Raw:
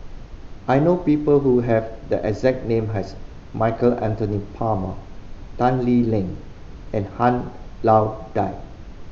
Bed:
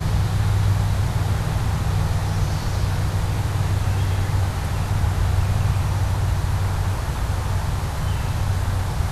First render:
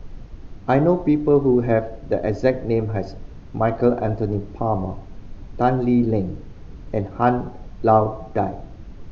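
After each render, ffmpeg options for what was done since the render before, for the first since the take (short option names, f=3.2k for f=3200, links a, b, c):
-af "afftdn=nr=6:nf=-39"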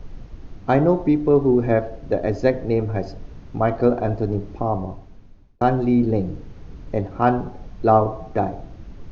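-filter_complex "[0:a]asplit=2[a][b];[a]atrim=end=5.61,asetpts=PTS-STARTPTS,afade=t=out:st=4.58:d=1.03[c];[b]atrim=start=5.61,asetpts=PTS-STARTPTS,afade=t=in:d=0.004:c=hsin[d];[c][d]concat=n=2:v=0:a=1"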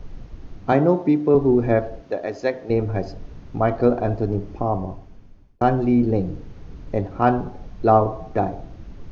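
-filter_complex "[0:a]asettb=1/sr,asplit=3[a][b][c];[a]atrim=end=0.724[d];[b]atrim=start=0.72:end=1.35,asetpts=PTS-STARTPTS,afade=t=in:d=0.004:c=qsin,afade=t=out:st=0.626:d=0.004:c=qsin,highpass=f=130:w=0.5412,highpass=f=130:w=1.3066[e];[c]atrim=start=1.346[f];[d][e]acrossfade=d=0.004:c1=hsin:c2=qsin[g];[g][f]acrossfade=d=0.004:c1=qsin:c2=hsin,asettb=1/sr,asplit=3[h][i][j];[h]atrim=end=2.024[k];[i]atrim=start=2.02:end=2.7,asetpts=PTS-STARTPTS,afade=t=in:d=0.004:c=qsin,afade=t=out:st=0.676:d=0.004:c=qsin,highpass=f=650:p=1[l];[j]atrim=start=2.696[m];[k][l]acrossfade=d=0.004:c1=hsin:c2=qsin[n];[n][m]acrossfade=d=0.004:c1=qsin:c2=hsin,asettb=1/sr,asplit=3[o][p][q];[o]atrim=end=4.224[r];[p]atrim=start=4.22:end=6.14,asetpts=PTS-STARTPTS,afade=t=in:d=0.004:c=qsin,afade=t=out:st=1.916:d=0.004:c=qsin,bandreject=f=3.9k:w=14[s];[q]atrim=start=6.136[t];[r][s]acrossfade=d=0.004:c1=hsin:c2=qsin[u];[u][t]acrossfade=d=0.004:c1=qsin:c2=hsin"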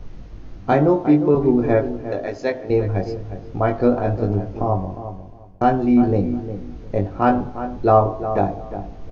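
-filter_complex "[0:a]asplit=2[a][b];[b]adelay=20,volume=-5dB[c];[a][c]amix=inputs=2:normalize=0,asplit=2[d][e];[e]adelay=356,lowpass=f=1.5k:p=1,volume=-10.5dB,asplit=2[f][g];[g]adelay=356,lowpass=f=1.5k:p=1,volume=0.21,asplit=2[h][i];[i]adelay=356,lowpass=f=1.5k:p=1,volume=0.21[j];[d][f][h][j]amix=inputs=4:normalize=0"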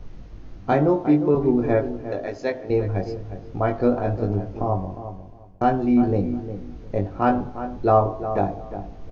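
-af "volume=-3dB"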